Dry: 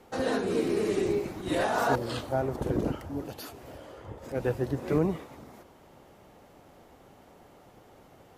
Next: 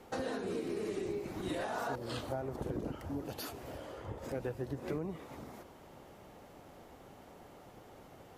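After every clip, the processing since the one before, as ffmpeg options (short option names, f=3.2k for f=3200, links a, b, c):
-af "acompressor=threshold=-35dB:ratio=6"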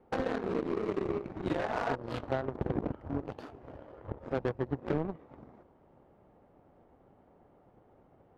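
-af "aeval=exprs='0.0668*(cos(1*acos(clip(val(0)/0.0668,-1,1)))-cos(1*PI/2))+0.0075*(cos(7*acos(clip(val(0)/0.0668,-1,1)))-cos(7*PI/2))':c=same,adynamicsmooth=sensitivity=5.5:basefreq=1.4k,volume=7dB"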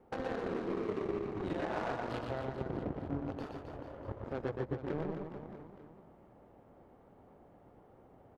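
-af "alimiter=level_in=2.5dB:limit=-24dB:level=0:latency=1:release=276,volume=-2.5dB,aecho=1:1:120|264|436.8|644.2|893:0.631|0.398|0.251|0.158|0.1"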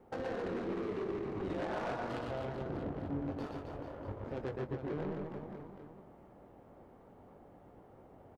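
-filter_complex "[0:a]asoftclip=type=tanh:threshold=-33.5dB,asplit=2[a][b];[b]adelay=21,volume=-10.5dB[c];[a][c]amix=inputs=2:normalize=0,volume=2dB"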